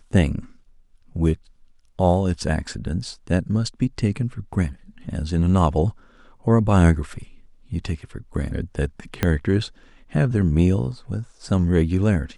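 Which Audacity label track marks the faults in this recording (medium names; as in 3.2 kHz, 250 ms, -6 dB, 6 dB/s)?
9.230000	9.230000	pop -6 dBFS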